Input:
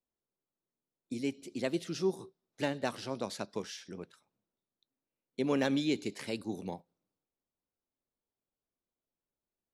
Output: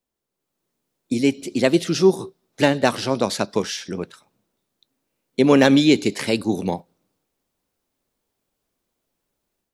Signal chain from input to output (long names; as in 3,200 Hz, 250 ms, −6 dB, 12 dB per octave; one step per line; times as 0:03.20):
automatic gain control gain up to 7.5 dB
level +8.5 dB